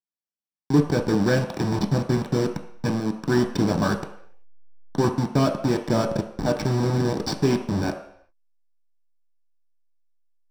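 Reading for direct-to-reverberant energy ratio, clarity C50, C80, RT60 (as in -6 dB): 2.5 dB, 9.0 dB, 11.5 dB, no single decay rate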